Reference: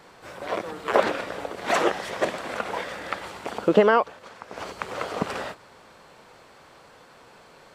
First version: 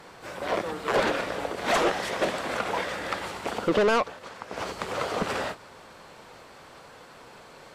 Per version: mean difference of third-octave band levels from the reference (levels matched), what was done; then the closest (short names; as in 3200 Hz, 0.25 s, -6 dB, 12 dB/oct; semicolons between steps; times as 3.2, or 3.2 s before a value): 4.5 dB: soft clip -21 dBFS, distortion -6 dB; gain +3 dB; AAC 64 kbps 32000 Hz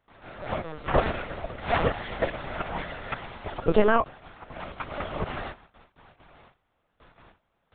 8.0 dB: gate with hold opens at -40 dBFS; LPC vocoder at 8 kHz pitch kept; gain -2 dB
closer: first